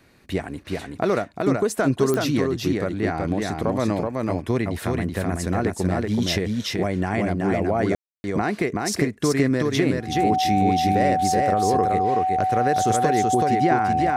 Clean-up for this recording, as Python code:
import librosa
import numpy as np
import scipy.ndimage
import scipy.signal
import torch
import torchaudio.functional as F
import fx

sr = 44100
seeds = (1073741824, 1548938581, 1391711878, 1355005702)

y = fx.fix_declick_ar(x, sr, threshold=10.0)
y = fx.notch(y, sr, hz=750.0, q=30.0)
y = fx.fix_ambience(y, sr, seeds[0], print_start_s=0.0, print_end_s=0.5, start_s=7.95, end_s=8.24)
y = fx.fix_echo_inverse(y, sr, delay_ms=377, level_db=-3.0)